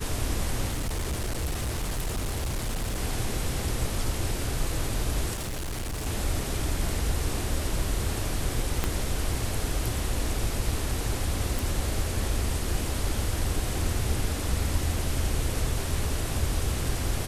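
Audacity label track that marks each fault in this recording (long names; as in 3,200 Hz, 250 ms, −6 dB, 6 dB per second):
0.700000	3.000000	clipping −25.5 dBFS
5.330000	6.070000	clipping −29 dBFS
8.840000	8.840000	click −11 dBFS
11.590000	11.590000	click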